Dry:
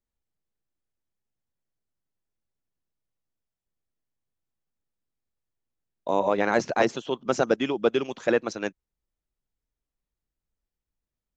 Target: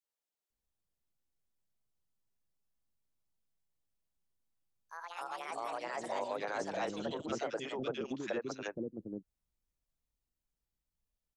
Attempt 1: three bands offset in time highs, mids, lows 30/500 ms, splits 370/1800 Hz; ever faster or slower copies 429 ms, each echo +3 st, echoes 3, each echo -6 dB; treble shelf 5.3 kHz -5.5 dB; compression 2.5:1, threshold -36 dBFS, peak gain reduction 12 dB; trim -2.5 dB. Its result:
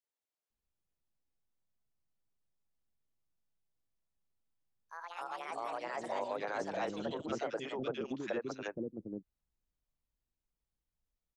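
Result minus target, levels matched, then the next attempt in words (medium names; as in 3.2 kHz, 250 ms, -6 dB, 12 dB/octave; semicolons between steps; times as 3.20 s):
8 kHz band -4.5 dB
three bands offset in time highs, mids, lows 30/500 ms, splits 370/1800 Hz; ever faster or slower copies 429 ms, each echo +3 st, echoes 3, each echo -6 dB; treble shelf 5.3 kHz +2 dB; compression 2.5:1, threshold -36 dBFS, peak gain reduction 12 dB; trim -2.5 dB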